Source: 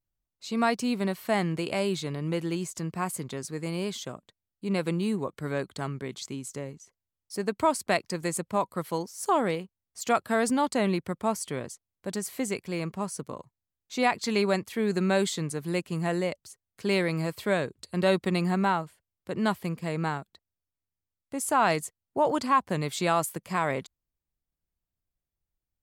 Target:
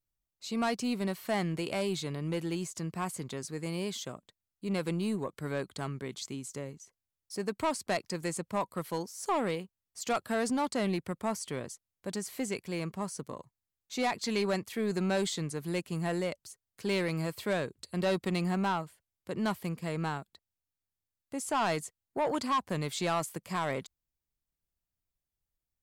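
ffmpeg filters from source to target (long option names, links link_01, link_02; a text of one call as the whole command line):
ffmpeg -i in.wav -filter_complex "[0:a]asoftclip=type=tanh:threshold=-20dB,highshelf=frequency=4900:gain=4,acrossover=split=7500[link_01][link_02];[link_02]acompressor=threshold=-43dB:ratio=4:attack=1:release=60[link_03];[link_01][link_03]amix=inputs=2:normalize=0,volume=-3dB" out.wav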